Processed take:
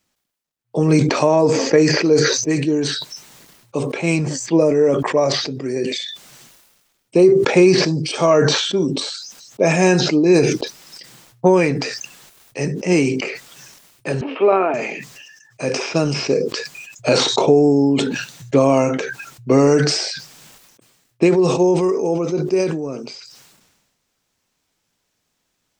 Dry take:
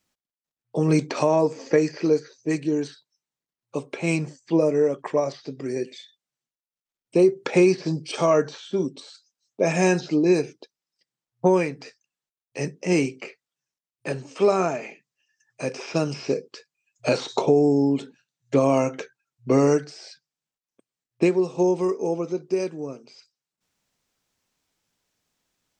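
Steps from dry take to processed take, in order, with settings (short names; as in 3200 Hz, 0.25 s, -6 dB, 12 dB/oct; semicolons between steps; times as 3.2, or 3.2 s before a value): 14.21–14.74 elliptic band-pass 250–2900 Hz, stop band 40 dB; sustainer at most 42 dB/s; gain +5 dB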